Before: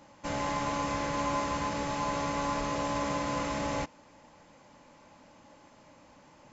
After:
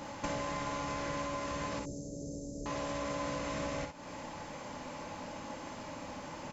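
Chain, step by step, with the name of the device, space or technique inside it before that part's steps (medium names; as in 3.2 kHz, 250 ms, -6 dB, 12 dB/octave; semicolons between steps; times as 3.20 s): serial compression, leveller first (compression 2:1, threshold -35 dBFS, peak gain reduction 5 dB; compression 6:1, threshold -47 dBFS, peak gain reduction 14.5 dB); 1.79–2.66 s: inverse Chebyshev band-stop 1.1–2.8 kHz, stop band 60 dB; early reflections 51 ms -9 dB, 63 ms -8 dB; trim +11.5 dB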